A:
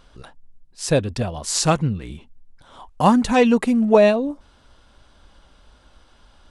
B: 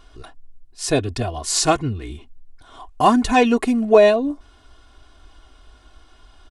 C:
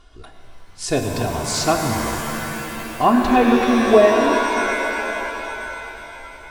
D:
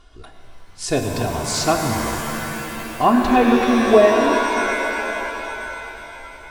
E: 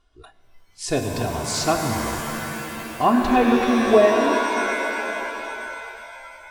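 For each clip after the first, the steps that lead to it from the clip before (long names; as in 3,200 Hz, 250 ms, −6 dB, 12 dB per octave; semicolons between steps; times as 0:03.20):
comb filter 2.8 ms, depth 74%
treble cut that deepens with the level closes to 2,000 Hz, closed at −10.5 dBFS; reverb with rising layers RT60 3.5 s, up +7 semitones, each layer −2 dB, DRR 3.5 dB; level −1.5 dB
no processing that can be heard
noise reduction from a noise print of the clip's start 12 dB; level −2.5 dB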